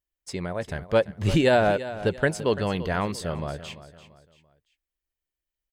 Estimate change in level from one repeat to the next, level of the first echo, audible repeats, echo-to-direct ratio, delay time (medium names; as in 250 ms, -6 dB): -8.5 dB, -14.5 dB, 3, -14.0 dB, 340 ms